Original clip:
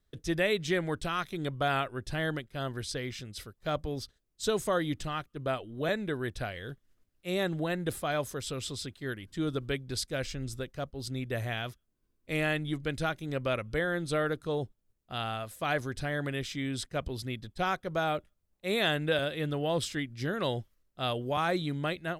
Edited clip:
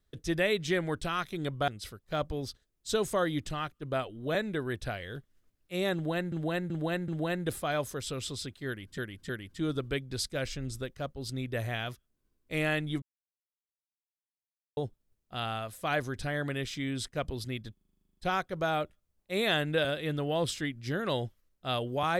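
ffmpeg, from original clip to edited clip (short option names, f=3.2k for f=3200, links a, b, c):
-filter_complex "[0:a]asplit=20[a][b][c][d][e][f][g][h][i][j][k][l][m][n][o][p][q][r][s][t];[a]atrim=end=1.682[u];[b]atrim=start=3.218:end=7.862[v];[c]atrim=start=7.478:end=7.862[w];[d]atrim=start=7.478:end=7.862[x];[e]atrim=start=7.478:end=9.382[y];[f]atrim=start=9.068:end=9.382[z];[g]atrim=start=9.068:end=12.8,asetpts=PTS-STARTPTS,afade=t=out:st=3.728:d=0.004:c=hsin[aa];[h]atrim=start=12.8:end=14.55,asetpts=PTS-STARTPTS,volume=0[ab];[i]atrim=start=14.55:end=17.552,asetpts=PTS-STARTPTS,afade=t=in:d=0.004:c=hsin[ac];[j]atrim=start=17.508:end=17.552[ad];[k]atrim=start=17.508:end=17.552[ae];[l]atrim=start=17.508:end=17.552[af];[m]atrim=start=17.508:end=17.552[ag];[n]atrim=start=17.508:end=17.552[ah];[o]atrim=start=17.508:end=17.552[ai];[p]atrim=start=17.508:end=17.552[aj];[q]atrim=start=17.508:end=17.552[ak];[r]atrim=start=17.508:end=17.552[al];[s]atrim=start=17.508:end=17.552[am];[t]atrim=start=17.508[an];[u][v]acrossfade=d=0.004:c1=hsin:c2=hsin[ao];[ao][w]acrossfade=d=0.004:c1=hsin:c2=hsin[ap];[ap][x]acrossfade=d=0.004:c1=hsin:c2=hsin[aq];[aq][y]acrossfade=d=0.004:c1=hsin:c2=hsin[ar];[ar][z]acrossfade=d=0.004:c1=hsin:c2=hsin[as];[aa][ab][ac]concat=n=3:v=0:a=1[at];[as][at]acrossfade=d=0.004:c1=hsin:c2=hsin[au];[au][ad]acrossfade=d=0.004:c1=hsin:c2=hsin[av];[av][ae]acrossfade=d=0.004:c1=hsin:c2=hsin[aw];[aw][af]acrossfade=d=0.004:c1=hsin:c2=hsin[ax];[ax][ag]acrossfade=d=0.004:c1=hsin:c2=hsin[ay];[ay][ah]acrossfade=d=0.004:c1=hsin:c2=hsin[az];[az][ai]acrossfade=d=0.004:c1=hsin:c2=hsin[ba];[ba][aj]acrossfade=d=0.004:c1=hsin:c2=hsin[bb];[bb][ak]acrossfade=d=0.004:c1=hsin:c2=hsin[bc];[bc][al]acrossfade=d=0.004:c1=hsin:c2=hsin[bd];[bd][am]acrossfade=d=0.004:c1=hsin:c2=hsin[be];[be][an]acrossfade=d=0.004:c1=hsin:c2=hsin"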